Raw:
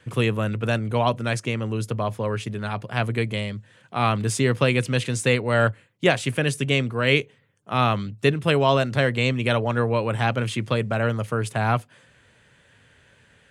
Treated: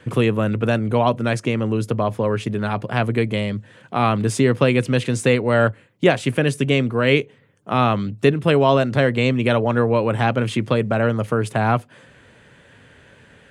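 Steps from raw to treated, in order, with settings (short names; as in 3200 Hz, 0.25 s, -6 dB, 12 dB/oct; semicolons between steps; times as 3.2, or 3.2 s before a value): EQ curve 110 Hz 0 dB, 270 Hz +5 dB, 6700 Hz -4 dB; in parallel at +3 dB: compressor, threshold -28 dBFS, peak gain reduction 16.5 dB; on the sum: gain -1 dB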